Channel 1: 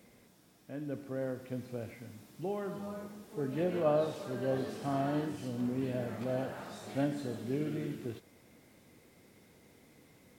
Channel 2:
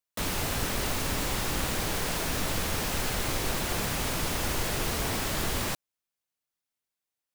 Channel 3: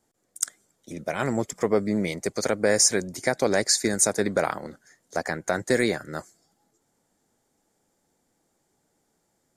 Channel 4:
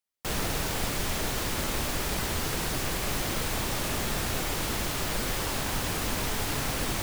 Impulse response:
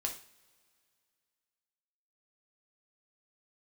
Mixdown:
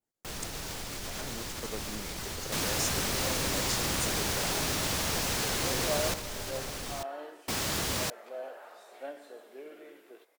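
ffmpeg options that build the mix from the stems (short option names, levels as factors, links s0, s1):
-filter_complex "[0:a]highpass=f=460:w=0.5412,highpass=f=460:w=1.3066,equalizer=f=5900:w=0.6:g=-7.5,adelay=2050,volume=0.708[s0];[1:a]highpass=60,adelay=2350,volume=0.794,asplit=3[s1][s2][s3];[s1]atrim=end=6.14,asetpts=PTS-STARTPTS,afade=t=out:st=6.136:d=0.004:c=hsin[s4];[s2]atrim=start=6.14:end=7.48,asetpts=PTS-STARTPTS,volume=0[s5];[s3]atrim=start=7.48,asetpts=PTS-STARTPTS,afade=t=in:d=0.004:c=hsin[s6];[s4][s5][s6]concat=n=3:v=0:a=1[s7];[2:a]volume=0.112[s8];[3:a]alimiter=limit=0.0794:level=0:latency=1:release=77,volume=0.422[s9];[s0][s7][s8][s9]amix=inputs=4:normalize=0,adynamicequalizer=threshold=0.00224:dfrequency=5600:dqfactor=0.86:tfrequency=5600:tqfactor=0.86:attack=5:release=100:ratio=0.375:range=2.5:mode=boostabove:tftype=bell"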